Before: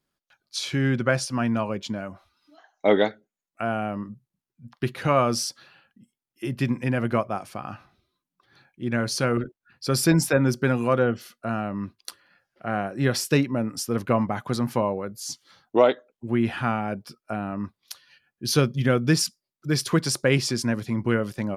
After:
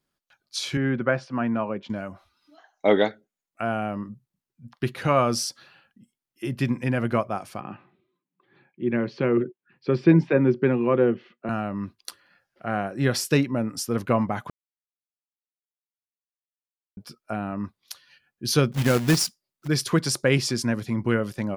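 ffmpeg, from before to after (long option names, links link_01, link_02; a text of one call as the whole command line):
ffmpeg -i in.wav -filter_complex "[0:a]asettb=1/sr,asplit=3[link_01][link_02][link_03];[link_01]atrim=end=0.774[link_04];[link_02]atrim=start=0.77:end=1.9,asetpts=PTS-STARTPTS,afade=type=in:duration=0.004:curve=qsin,afade=type=out:start_time=1.126:duration=0.004:curve=qsin,highpass=150,lowpass=2100[link_05];[link_03]atrim=start=1.896[link_06];[link_04][link_05]acrossfade=duration=0.004:curve1=hsin:curve2=qsin[link_07];[link_07][link_06]acrossfade=duration=0.004:curve1=qsin:curve2=hsin,asettb=1/sr,asplit=3[link_08][link_09][link_10];[link_08]atrim=end=7.604[link_11];[link_09]atrim=start=7.6:end=11.49,asetpts=PTS-STARTPTS,afade=type=in:duration=0.004:curve=qsin,afade=type=out:start_time=3.886:duration=0.004:curve=qsin,highpass=frequency=130:width=0.5412,highpass=frequency=130:width=1.3066,equalizer=frequency=180:width_type=q:width=4:gain=4,equalizer=frequency=370:width_type=q:width=4:gain=8,equalizer=frequency=690:width_type=q:width=4:gain=-5,equalizer=frequency=1400:width_type=q:width=4:gain=-8,lowpass=frequency=2800:width=0.5412,lowpass=frequency=2800:width=1.3066[link_12];[link_10]atrim=start=11.486[link_13];[link_11][link_12]acrossfade=duration=0.004:curve1=hsin:curve2=qsin[link_14];[link_14][link_13]acrossfade=duration=0.004:curve1=qsin:curve2=hsin,asettb=1/sr,asplit=3[link_15][link_16][link_17];[link_15]atrim=end=18.724[link_18];[link_16]atrim=start=18.72:end=19.68,asetpts=PTS-STARTPTS,afade=type=in:duration=0.004:curve=qsin,afade=type=out:start_time=0.956:duration=0.004:curve=qsin,acrusher=bits=2:mode=log:mix=0:aa=0.000001[link_19];[link_17]atrim=start=19.676[link_20];[link_18][link_19]acrossfade=duration=0.004:curve1=hsin:curve2=qsin[link_21];[link_21][link_20]acrossfade=duration=0.004:curve1=qsin:curve2=hsin,asplit=3[link_22][link_23][link_24];[link_22]atrim=end=14.5,asetpts=PTS-STARTPTS,afade=type=out:start_time=14.496:duration=0.004:curve=hsin[link_25];[link_23]atrim=start=14.5:end=16.97,asetpts=PTS-STARTPTS,volume=0[link_26];[link_24]atrim=start=16.97,asetpts=PTS-STARTPTS,afade=type=in:duration=0.004:curve=hsin[link_27];[link_25][link_26][link_27]concat=n=3:v=0:a=1" out.wav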